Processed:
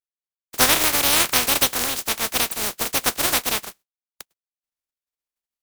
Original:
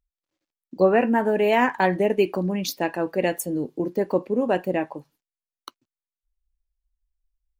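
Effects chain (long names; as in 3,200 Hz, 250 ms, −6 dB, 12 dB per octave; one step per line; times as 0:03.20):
compressing power law on the bin magnitudes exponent 0.13
wrong playback speed 33 rpm record played at 45 rpm
noise gate with hold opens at −43 dBFS
level +2.5 dB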